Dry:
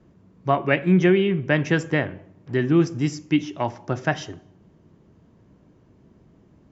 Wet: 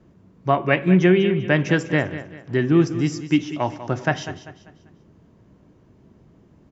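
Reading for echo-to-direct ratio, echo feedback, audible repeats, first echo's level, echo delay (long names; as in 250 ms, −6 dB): −12.5 dB, 37%, 3, −13.0 dB, 196 ms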